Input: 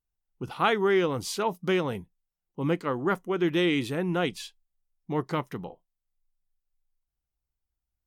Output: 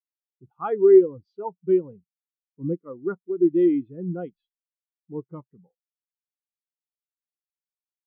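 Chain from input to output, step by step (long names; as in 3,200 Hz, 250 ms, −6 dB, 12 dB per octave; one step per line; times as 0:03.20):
high-frequency loss of the air 120 metres
every bin expanded away from the loudest bin 2.5 to 1
level +7 dB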